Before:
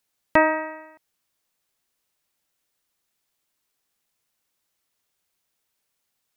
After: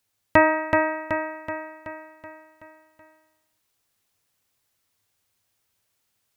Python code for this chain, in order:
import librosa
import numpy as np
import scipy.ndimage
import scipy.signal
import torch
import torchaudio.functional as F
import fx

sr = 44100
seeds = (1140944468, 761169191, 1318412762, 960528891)

p1 = fx.peak_eq(x, sr, hz=98.0, db=13.5, octaves=0.45)
p2 = p1 + fx.echo_feedback(p1, sr, ms=377, feedback_pct=53, wet_db=-4.0, dry=0)
y = F.gain(torch.from_numpy(p2), 1.0).numpy()